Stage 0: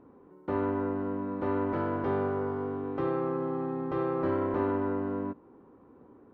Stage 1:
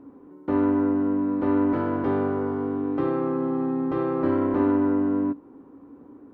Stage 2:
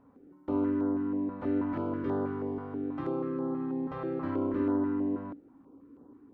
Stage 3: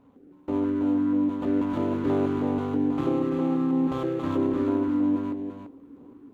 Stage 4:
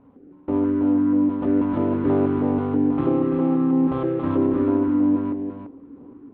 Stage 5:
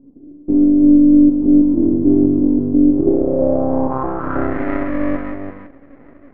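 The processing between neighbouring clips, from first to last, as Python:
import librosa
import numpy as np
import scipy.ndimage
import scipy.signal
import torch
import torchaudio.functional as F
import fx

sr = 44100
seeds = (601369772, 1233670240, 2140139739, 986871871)

y1 = fx.peak_eq(x, sr, hz=280.0, db=13.0, octaves=0.24)
y1 = y1 * 10.0 ** (3.0 / 20.0)
y2 = fx.filter_held_notch(y1, sr, hz=6.2, low_hz=330.0, high_hz=2400.0)
y2 = y2 * 10.0 ** (-6.5 / 20.0)
y3 = scipy.ndimage.median_filter(y2, 25, mode='constant')
y3 = fx.rider(y3, sr, range_db=10, speed_s=0.5)
y3 = y3 + 10.0 ** (-6.5 / 20.0) * np.pad(y3, (int(340 * sr / 1000.0), 0))[:len(y3)]
y3 = y3 * 10.0 ** (5.5 / 20.0)
y4 = fx.air_absorb(y3, sr, metres=480.0)
y4 = y4 * 10.0 ** (5.5 / 20.0)
y5 = np.maximum(y4, 0.0)
y5 = fx.filter_sweep_lowpass(y5, sr, from_hz=310.0, to_hz=2000.0, start_s=2.87, end_s=4.62, q=4.5)
y5 = y5 * 10.0 ** (3.5 / 20.0)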